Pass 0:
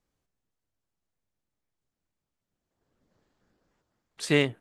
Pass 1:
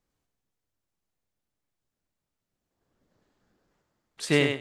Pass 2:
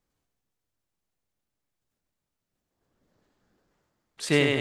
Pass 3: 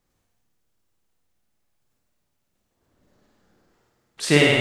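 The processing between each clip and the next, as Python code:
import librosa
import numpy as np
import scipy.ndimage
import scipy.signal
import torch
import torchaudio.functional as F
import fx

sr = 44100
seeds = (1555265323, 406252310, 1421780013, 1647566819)

y1 = fx.echo_thinned(x, sr, ms=99, feedback_pct=18, hz=220.0, wet_db=-5)
y2 = fx.sustainer(y1, sr, db_per_s=32.0)
y3 = fx.room_flutter(y2, sr, wall_m=9.2, rt60_s=0.81)
y3 = y3 * 10.0 ** (5.5 / 20.0)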